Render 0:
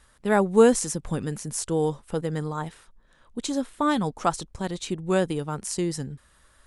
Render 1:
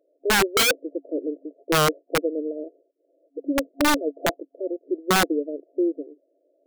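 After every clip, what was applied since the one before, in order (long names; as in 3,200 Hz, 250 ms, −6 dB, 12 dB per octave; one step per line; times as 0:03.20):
brick-wall band-pass 270–690 Hz
wrap-around overflow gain 19.5 dB
level +6 dB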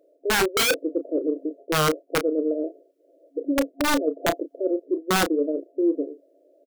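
reversed playback
downward compressor 5 to 1, threshold −28 dBFS, peak gain reduction 10.5 dB
reversed playback
double-tracking delay 32 ms −9.5 dB
level +7.5 dB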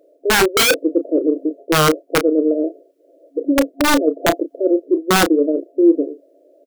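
dynamic equaliser 330 Hz, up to +4 dB, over −36 dBFS, Q 7.9
level +7 dB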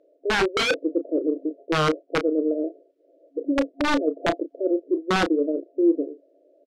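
low-pass filter 4,300 Hz 12 dB per octave
level −7 dB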